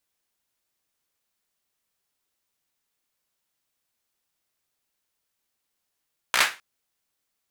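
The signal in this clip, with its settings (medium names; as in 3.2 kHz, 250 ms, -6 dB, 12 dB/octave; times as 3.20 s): hand clap length 0.26 s, bursts 5, apart 16 ms, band 1.7 kHz, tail 0.28 s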